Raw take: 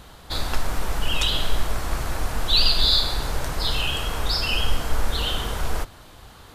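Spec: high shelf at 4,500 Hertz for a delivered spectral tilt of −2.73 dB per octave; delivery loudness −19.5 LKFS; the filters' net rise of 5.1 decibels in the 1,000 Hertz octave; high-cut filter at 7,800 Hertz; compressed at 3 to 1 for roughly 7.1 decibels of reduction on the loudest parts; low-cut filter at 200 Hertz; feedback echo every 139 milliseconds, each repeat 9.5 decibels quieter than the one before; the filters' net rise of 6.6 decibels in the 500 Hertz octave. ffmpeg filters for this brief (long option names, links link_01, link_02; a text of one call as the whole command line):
ffmpeg -i in.wav -af "highpass=200,lowpass=7800,equalizer=frequency=500:width_type=o:gain=7,equalizer=frequency=1000:width_type=o:gain=4.5,highshelf=frequency=4500:gain=-4.5,acompressor=threshold=-27dB:ratio=3,aecho=1:1:139|278|417|556:0.335|0.111|0.0365|0.012,volume=9dB" out.wav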